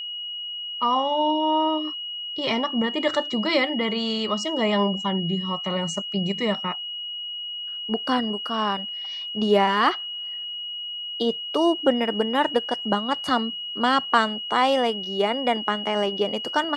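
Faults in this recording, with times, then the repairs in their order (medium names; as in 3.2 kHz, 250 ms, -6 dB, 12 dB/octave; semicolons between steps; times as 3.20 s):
whine 2.9 kHz -30 dBFS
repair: band-stop 2.9 kHz, Q 30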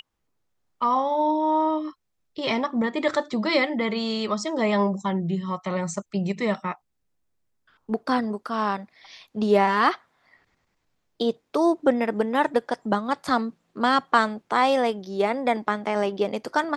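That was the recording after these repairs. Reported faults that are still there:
nothing left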